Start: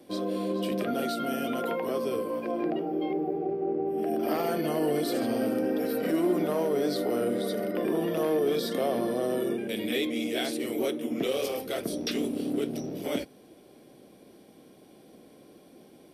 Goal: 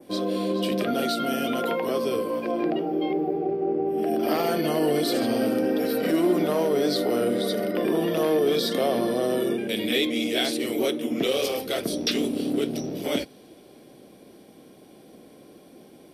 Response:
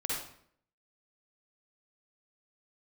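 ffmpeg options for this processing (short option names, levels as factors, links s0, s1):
-af "adynamicequalizer=threshold=0.00316:dfrequency=4000:dqfactor=1:tfrequency=4000:tqfactor=1:attack=5:release=100:ratio=0.375:range=2.5:mode=boostabove:tftype=bell,volume=1.58"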